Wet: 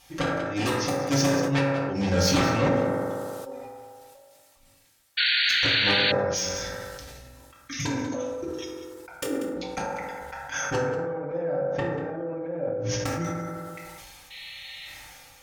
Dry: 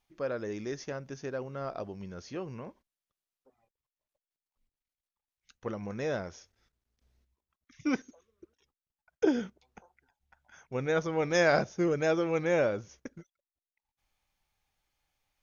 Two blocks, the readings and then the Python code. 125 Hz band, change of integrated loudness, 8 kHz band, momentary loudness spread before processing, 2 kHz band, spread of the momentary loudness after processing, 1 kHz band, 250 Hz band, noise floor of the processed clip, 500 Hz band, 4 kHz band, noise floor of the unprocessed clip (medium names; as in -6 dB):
+10.5 dB, +6.0 dB, no reading, 16 LU, +9.5 dB, 20 LU, +8.0 dB, +6.5 dB, -57 dBFS, +4.0 dB, +21.0 dB, under -85 dBFS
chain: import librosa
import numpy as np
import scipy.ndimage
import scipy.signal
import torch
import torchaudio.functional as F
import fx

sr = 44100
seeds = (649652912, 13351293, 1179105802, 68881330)

y = fx.env_lowpass_down(x, sr, base_hz=640.0, full_db=-25.5)
y = fx.high_shelf(y, sr, hz=2300.0, db=8.5)
y = fx.hum_notches(y, sr, base_hz=60, count=6)
y = fx.gate_flip(y, sr, shuts_db=-27.0, range_db=-29)
y = fx.fold_sine(y, sr, drive_db=15, ceiling_db=-24.0)
y = fx.notch_comb(y, sr, f0_hz=210.0)
y = y + 10.0 ** (-15.5 / 20.0) * np.pad(y, (int(189 * sr / 1000.0), 0))[:len(y)]
y = fx.spec_paint(y, sr, seeds[0], shape='noise', start_s=14.3, length_s=0.57, low_hz=1800.0, high_hz=4300.0, level_db=-46.0)
y = fx.rev_fdn(y, sr, rt60_s=1.5, lf_ratio=0.75, hf_ratio=0.3, size_ms=11.0, drr_db=-5.0)
y = fx.spec_paint(y, sr, seeds[1], shape='noise', start_s=5.17, length_s=0.95, low_hz=1400.0, high_hz=4600.0, level_db=-24.0)
y = fx.sustainer(y, sr, db_per_s=22.0)
y = y * 10.0 ** (1.0 / 20.0)